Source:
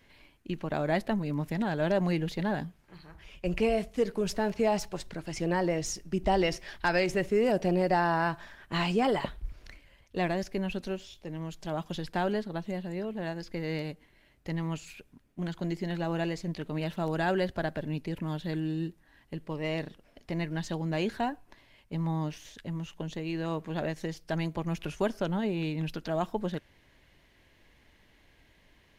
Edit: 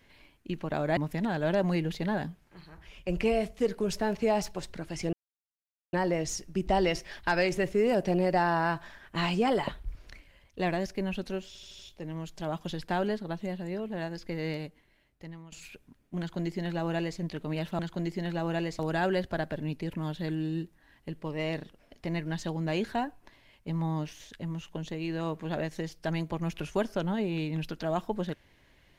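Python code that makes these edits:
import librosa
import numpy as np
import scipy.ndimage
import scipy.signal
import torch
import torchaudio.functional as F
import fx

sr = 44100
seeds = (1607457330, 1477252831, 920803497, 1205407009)

y = fx.edit(x, sr, fx.cut(start_s=0.97, length_s=0.37),
    fx.insert_silence(at_s=5.5, length_s=0.8),
    fx.stutter(start_s=11.04, slice_s=0.08, count=5),
    fx.fade_out_to(start_s=13.72, length_s=1.05, floor_db=-20.5),
    fx.duplicate(start_s=15.44, length_s=1.0, to_s=17.04), tone=tone)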